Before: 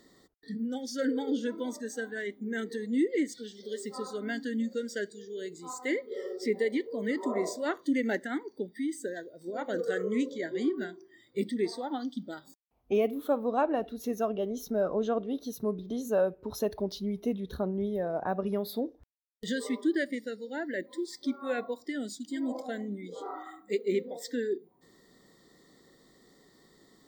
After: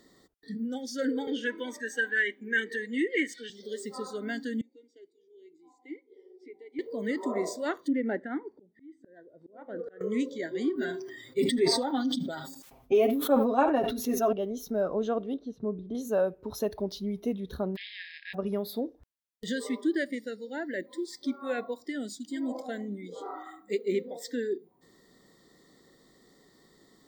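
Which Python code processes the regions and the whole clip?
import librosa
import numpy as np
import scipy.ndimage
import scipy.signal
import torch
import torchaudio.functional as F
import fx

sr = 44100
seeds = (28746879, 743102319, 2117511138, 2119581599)

y = fx.chain(x, sr, fx.highpass(hz=280.0, slope=12),
    fx.band_shelf(hz=2200.0, db=14.0, octaves=1.2),
    fx.notch_comb(f0_hz=680.0), at=(1.27, 3.5))
y = fx.chain(y, sr, fx.vowel_filter(vowel='u'),
    fx.fixed_phaser(hz=510.0, stages=4), at=(4.61, 6.79))
y = fx.chain(y, sr, fx.lowpass(hz=1500.0, slope=12),
    fx.auto_swell(attack_ms=545.0), at=(7.88, 10.01))
y = fx.chain(y, sr, fx.comb(ms=7.5, depth=0.85),
    fx.echo_single(ms=77, db=-20.5),
    fx.sustainer(db_per_s=47.0), at=(10.75, 14.33))
y = fx.chain(y, sr, fx.lowpass(hz=2100.0, slope=12),
    fx.peak_eq(hz=1300.0, db=-5.5, octaves=2.1), at=(15.34, 15.95))
y = fx.spec_flatten(y, sr, power=0.37, at=(17.75, 18.33), fade=0.02)
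y = fx.brickwall_bandpass(y, sr, low_hz=1600.0, high_hz=5200.0, at=(17.75, 18.33), fade=0.02)
y = fx.air_absorb(y, sr, metres=210.0, at=(17.75, 18.33), fade=0.02)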